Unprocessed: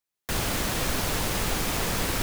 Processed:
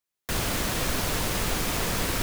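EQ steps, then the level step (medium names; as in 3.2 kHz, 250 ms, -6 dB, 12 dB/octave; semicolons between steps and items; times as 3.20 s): band-stop 820 Hz, Q 23; 0.0 dB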